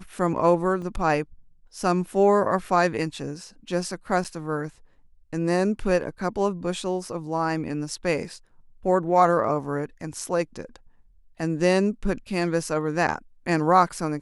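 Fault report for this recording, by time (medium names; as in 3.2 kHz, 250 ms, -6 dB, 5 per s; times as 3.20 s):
0.82 s: dropout 2.9 ms
4.24–4.25 s: dropout 7.5 ms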